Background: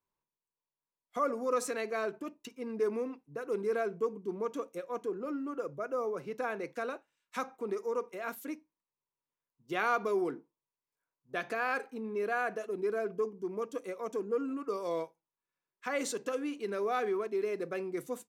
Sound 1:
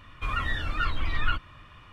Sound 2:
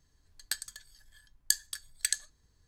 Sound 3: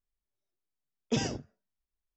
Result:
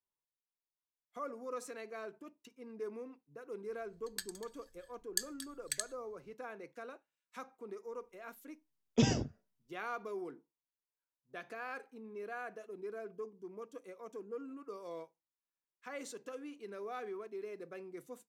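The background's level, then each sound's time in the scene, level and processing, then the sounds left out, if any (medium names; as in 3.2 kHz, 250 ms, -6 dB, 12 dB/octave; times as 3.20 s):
background -11 dB
3.67 s: add 2 -8 dB
7.86 s: add 3 -1.5 dB + bass shelf 270 Hz +5.5 dB
not used: 1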